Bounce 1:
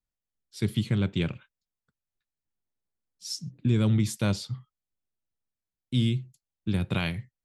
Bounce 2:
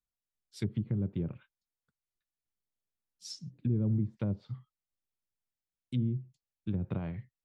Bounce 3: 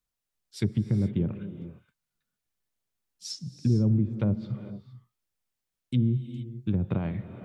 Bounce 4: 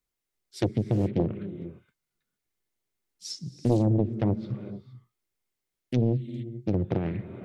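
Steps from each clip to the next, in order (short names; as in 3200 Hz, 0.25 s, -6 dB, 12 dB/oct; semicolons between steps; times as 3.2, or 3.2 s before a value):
treble ducked by the level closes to 470 Hz, closed at -22 dBFS; gain -6 dB
non-linear reverb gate 0.49 s rising, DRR 11 dB; gain +6.5 dB
small resonant body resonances 360/2100 Hz, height 8 dB, ringing for 25 ms; Doppler distortion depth 0.9 ms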